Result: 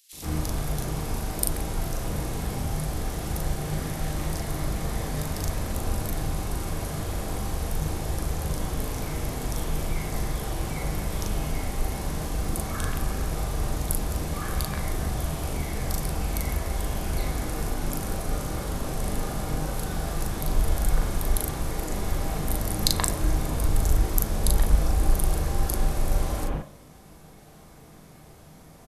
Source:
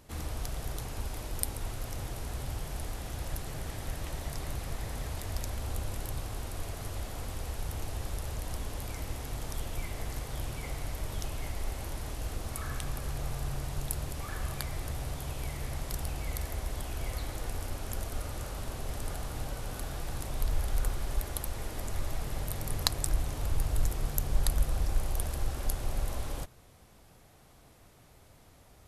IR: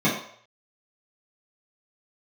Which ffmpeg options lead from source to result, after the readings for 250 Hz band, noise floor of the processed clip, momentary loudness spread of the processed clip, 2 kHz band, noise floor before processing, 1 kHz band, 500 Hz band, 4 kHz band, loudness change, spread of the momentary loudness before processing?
+12.0 dB, -49 dBFS, 6 LU, +7.0 dB, -58 dBFS, +8.5 dB, +9.0 dB, +6.0 dB, +7.5 dB, 6 LU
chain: -filter_complex "[0:a]asplit=2[a][b];[b]adelay=39,volume=-2.5dB[c];[a][c]amix=inputs=2:normalize=0,acrossover=split=2900[d][e];[d]adelay=130[f];[f][e]amix=inputs=2:normalize=0,asplit=2[g][h];[1:a]atrim=start_sample=2205[i];[h][i]afir=irnorm=-1:irlink=0,volume=-22.5dB[j];[g][j]amix=inputs=2:normalize=0,volume=5dB"

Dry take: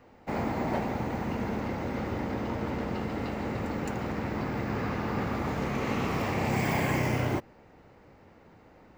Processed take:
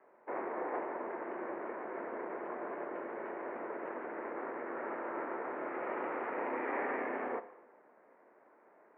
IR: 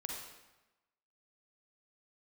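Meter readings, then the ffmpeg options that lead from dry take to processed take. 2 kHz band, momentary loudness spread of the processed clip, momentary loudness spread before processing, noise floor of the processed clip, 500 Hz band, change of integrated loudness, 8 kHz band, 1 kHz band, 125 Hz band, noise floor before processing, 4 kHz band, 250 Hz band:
-7.0 dB, 6 LU, 6 LU, -64 dBFS, -4.5 dB, -8.5 dB, under -30 dB, -5.5 dB, -34.5 dB, -56 dBFS, under -25 dB, -13.0 dB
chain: -filter_complex "[0:a]aeval=exprs='val(0)*sin(2*PI*210*n/s)':c=same,asplit=2[a][b];[1:a]atrim=start_sample=2205[c];[b][c]afir=irnorm=-1:irlink=0,volume=-9.5dB[d];[a][d]amix=inputs=2:normalize=0,highpass=f=440:t=q:w=0.5412,highpass=f=440:t=q:w=1.307,lowpass=f=2.1k:t=q:w=0.5176,lowpass=f=2.1k:t=q:w=0.7071,lowpass=f=2.1k:t=q:w=1.932,afreqshift=-80,volume=-3.5dB"

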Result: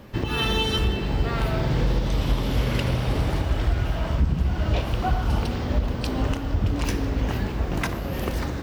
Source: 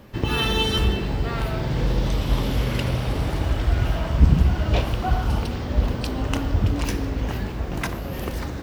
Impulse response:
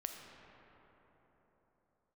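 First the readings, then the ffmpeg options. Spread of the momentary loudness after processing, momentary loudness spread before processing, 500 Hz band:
4 LU, 8 LU, -0.5 dB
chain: -filter_complex "[0:a]alimiter=limit=-14.5dB:level=0:latency=1:release=415,asplit=2[a][b];[1:a]atrim=start_sample=2205,lowpass=8.7k[c];[b][c]afir=irnorm=-1:irlink=0,volume=-9.5dB[d];[a][d]amix=inputs=2:normalize=0"

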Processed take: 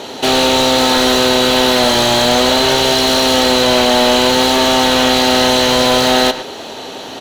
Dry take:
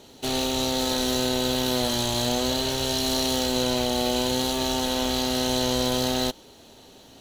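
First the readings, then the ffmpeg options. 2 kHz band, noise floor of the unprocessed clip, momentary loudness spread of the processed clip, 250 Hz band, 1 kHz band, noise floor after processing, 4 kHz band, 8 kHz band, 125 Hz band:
+18.0 dB, -50 dBFS, 4 LU, +10.5 dB, +16.0 dB, -29 dBFS, +13.5 dB, +10.0 dB, +7.0 dB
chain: -filter_complex "[0:a]asplit=2[a][b];[b]highpass=f=720:p=1,volume=25dB,asoftclip=type=tanh:threshold=-10dB[c];[a][c]amix=inputs=2:normalize=0,lowpass=f=2k:p=1,volume=-6dB,asplit=2[d][e];[e]adelay=110,highpass=300,lowpass=3.4k,asoftclip=type=hard:threshold=-21dB,volume=-10dB[f];[d][f]amix=inputs=2:normalize=0,volume=8.5dB"

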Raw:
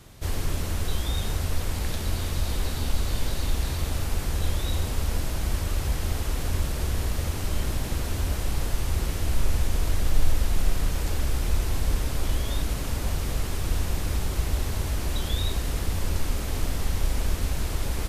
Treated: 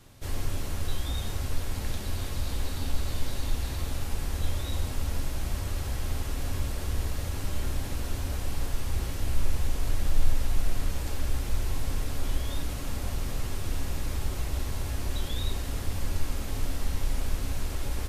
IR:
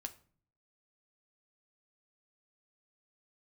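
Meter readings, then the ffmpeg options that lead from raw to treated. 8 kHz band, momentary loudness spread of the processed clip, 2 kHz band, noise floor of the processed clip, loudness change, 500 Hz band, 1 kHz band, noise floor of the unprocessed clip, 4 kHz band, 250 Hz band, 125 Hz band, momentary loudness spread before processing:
-5.0 dB, 2 LU, -4.5 dB, -34 dBFS, -4.5 dB, -5.0 dB, -4.5 dB, -30 dBFS, -5.0 dB, -4.0 dB, -4.5 dB, 2 LU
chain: -filter_complex "[1:a]atrim=start_sample=2205[a];[0:a][a]afir=irnorm=-1:irlink=0,volume=-1.5dB"

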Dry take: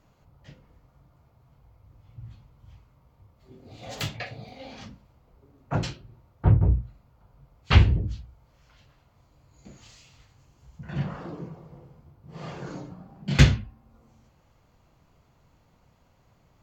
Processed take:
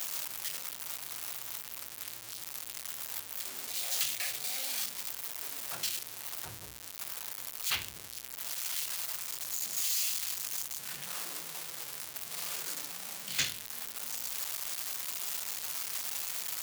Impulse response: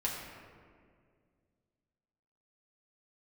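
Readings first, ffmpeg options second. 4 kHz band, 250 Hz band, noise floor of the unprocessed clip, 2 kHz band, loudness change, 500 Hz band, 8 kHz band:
+1.5 dB, -24.0 dB, -63 dBFS, -5.0 dB, -9.0 dB, -13.0 dB, n/a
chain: -af "aeval=exprs='val(0)+0.5*0.0668*sgn(val(0))':c=same,aderivative"

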